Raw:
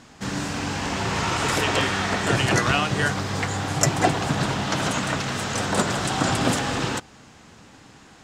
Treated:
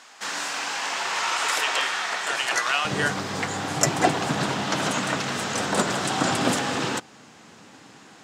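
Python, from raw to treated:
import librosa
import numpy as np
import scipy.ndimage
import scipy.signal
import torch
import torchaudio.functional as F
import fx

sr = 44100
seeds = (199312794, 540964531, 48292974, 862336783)

y = fx.highpass(x, sr, hz=fx.steps((0.0, 830.0), (2.85, 170.0)), slope=12)
y = fx.rider(y, sr, range_db=4, speed_s=2.0)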